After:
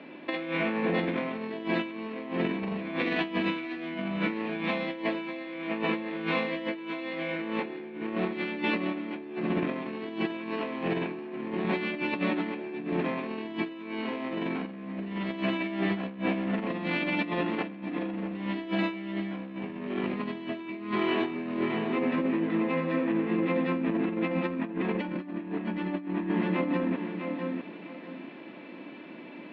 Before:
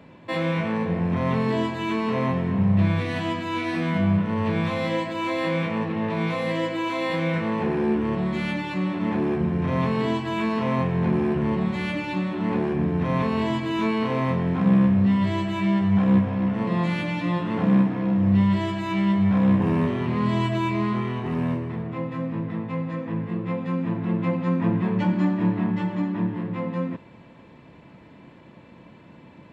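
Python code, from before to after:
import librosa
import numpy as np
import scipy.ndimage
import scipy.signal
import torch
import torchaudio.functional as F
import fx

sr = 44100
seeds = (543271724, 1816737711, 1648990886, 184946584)

y = fx.cabinet(x, sr, low_hz=240.0, low_slope=24, high_hz=4100.0, hz=(320.0, 480.0, 990.0, 2500.0), db=(5, -4, -6, 4))
y = fx.echo_feedback(y, sr, ms=652, feedback_pct=26, wet_db=-7)
y = fx.over_compress(y, sr, threshold_db=-30.0, ratio=-0.5)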